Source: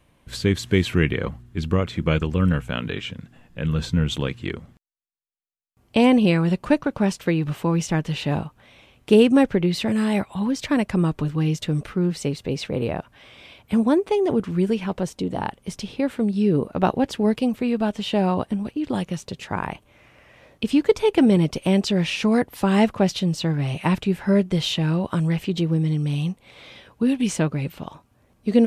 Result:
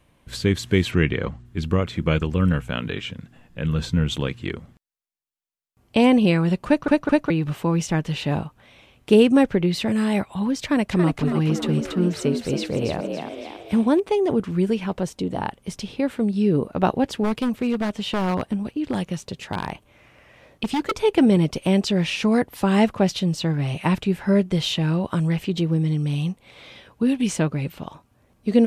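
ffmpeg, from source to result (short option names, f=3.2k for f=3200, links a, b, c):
-filter_complex "[0:a]asettb=1/sr,asplit=3[a][b][c];[a]atrim=end=0.914[d];[b]atrim=start=0.91:end=1.45,asetpts=PTS-STARTPTS,afade=t=in:d=0.004:c=qsin,afade=t=out:st=0.536:d=0.004:c=qsin,lowpass=f=8.1k:w=0.5412,lowpass=f=8.1k:w=1.3066[e];[c]atrim=start=1.446[f];[d][e]acrossfade=d=0.004:c1=hsin:c2=qsin[g];[g][f]acrossfade=d=0.004:c1=qsin:c2=hsin,asettb=1/sr,asplit=3[h][i][j];[h]atrim=end=10.614[k];[i]atrim=start=10.61:end=14,asetpts=PTS-STARTPTS,afade=t=in:d=0.004:c=qsin,afade=t=out:st=3.386:d=0.004:c=qsin,asplit=7[l][m][n][o][p][q][r];[m]adelay=280,afreqshift=69,volume=-5dB[s];[n]adelay=560,afreqshift=138,volume=-11.7dB[t];[o]adelay=840,afreqshift=207,volume=-18.5dB[u];[p]adelay=1120,afreqshift=276,volume=-25.2dB[v];[q]adelay=1400,afreqshift=345,volume=-32dB[w];[r]adelay=1680,afreqshift=414,volume=-38.7dB[x];[l][s][t][u][v][w][x]amix=inputs=7:normalize=0,atrim=end_sample=149499[y];[j]atrim=start=13.996[z];[k][y]acrossfade=d=0.004:c1=hsin:c2=qsin[aa];[aa][z]acrossfade=d=0.004:c1=qsin:c2=hsin,asplit=3[ab][ac][ad];[ab]afade=t=out:st=17.23:d=0.02[ae];[ac]aeval=exprs='0.158*(abs(mod(val(0)/0.158+3,4)-2)-1)':c=same,afade=t=in:st=17.23:d=0.02,afade=t=out:st=20.91:d=0.02[af];[ad]afade=t=in:st=20.91:d=0.02[ag];[ae][af][ag]amix=inputs=3:normalize=0,asplit=4[ah][ai][aj][ak];[ah]atrim=end=6.882[al];[ai]atrim=start=6.668:end=6.882[am];[aj]atrim=start=6.668:end=6.882[an];[ak]atrim=start=7.298[ao];[al][am]acrossfade=d=0.004:c1=hsin:c2=hsin[ap];[ap][an]acrossfade=d=0.004:c1=hsin:c2=hsin[aq];[aq][ao]acrossfade=d=0.004:c1=hsin:c2=hsin"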